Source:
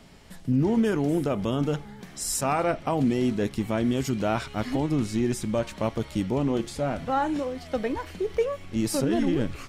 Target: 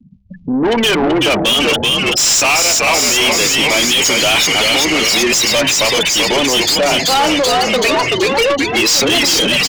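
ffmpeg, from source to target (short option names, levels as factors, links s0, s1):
-filter_complex "[0:a]afftfilt=real='re*gte(hypot(re,im),0.0178)':imag='im*gte(hypot(re,im),0.0178)':win_size=1024:overlap=0.75,bandreject=f=65.93:t=h:w=4,bandreject=f=131.86:t=h:w=4,bandreject=f=197.79:t=h:w=4,bandreject=f=263.72:t=h:w=4,acrossover=split=280[s0][s1];[s0]acompressor=threshold=0.0112:ratio=10[s2];[s2][s1]amix=inputs=2:normalize=0,aexciter=amount=9:drive=7.3:freq=2400,aresample=16000,asoftclip=type=tanh:threshold=0.335,aresample=44100,asplit=9[s3][s4][s5][s6][s7][s8][s9][s10][s11];[s4]adelay=381,afreqshift=-94,volume=0.531[s12];[s5]adelay=762,afreqshift=-188,volume=0.32[s13];[s6]adelay=1143,afreqshift=-282,volume=0.191[s14];[s7]adelay=1524,afreqshift=-376,volume=0.115[s15];[s8]adelay=1905,afreqshift=-470,volume=0.0692[s16];[s9]adelay=2286,afreqshift=-564,volume=0.0412[s17];[s10]adelay=2667,afreqshift=-658,volume=0.0248[s18];[s11]adelay=3048,afreqshift=-752,volume=0.0148[s19];[s3][s12][s13][s14][s15][s16][s17][s18][s19]amix=inputs=9:normalize=0,asplit=2[s20][s21];[s21]highpass=f=720:p=1,volume=44.7,asoftclip=type=tanh:threshold=0.562[s22];[s20][s22]amix=inputs=2:normalize=0,lowpass=f=6000:p=1,volume=0.501"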